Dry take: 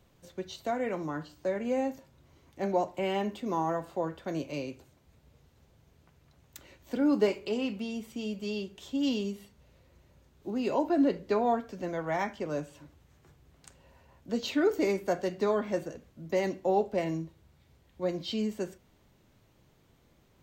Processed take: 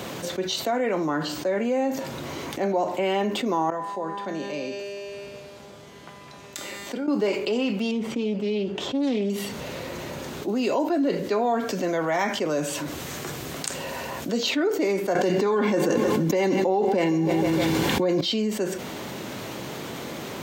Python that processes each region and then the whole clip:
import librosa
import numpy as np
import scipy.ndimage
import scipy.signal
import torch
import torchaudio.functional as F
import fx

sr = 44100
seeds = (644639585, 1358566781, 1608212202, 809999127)

y = fx.chain(x, sr, fx.lowpass(hz=11000.0, slope=12),
    fx.comb_fb(f0_hz=200.0, decay_s=1.7, harmonics='all', damping=0.0, mix_pct=90), at=(3.7, 7.08))
y = fx.chain(y, sr, fx.lowpass(hz=1400.0, slope=6),
    fx.doppler_dist(depth_ms=0.26), at=(7.91, 9.3))
y = fx.chain(y, sr, fx.high_shelf(hz=4600.0, db=8.0),
    fx.notch(hz=870.0, q=18.0), at=(10.48, 14.43))
y = fx.chain(y, sr, fx.notch_comb(f0_hz=640.0),
    fx.echo_feedback(ms=155, feedback_pct=55, wet_db=-20.5),
    fx.env_flatten(amount_pct=100), at=(15.15, 18.21))
y = scipy.signal.sosfilt(scipy.signal.butter(2, 210.0, 'highpass', fs=sr, output='sos'), y)
y = fx.high_shelf(y, sr, hz=10000.0, db=-3.5)
y = fx.env_flatten(y, sr, amount_pct=70)